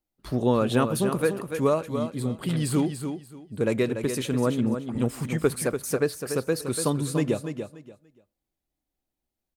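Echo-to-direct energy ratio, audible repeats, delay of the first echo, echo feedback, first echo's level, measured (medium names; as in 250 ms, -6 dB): -8.0 dB, 3, 290 ms, 22%, -8.0 dB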